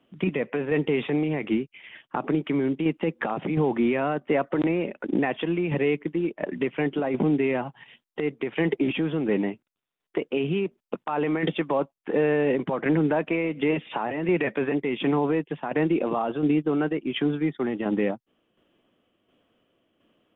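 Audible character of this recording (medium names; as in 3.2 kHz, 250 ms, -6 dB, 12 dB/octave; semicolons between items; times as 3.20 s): tremolo saw down 1.4 Hz, depth 50%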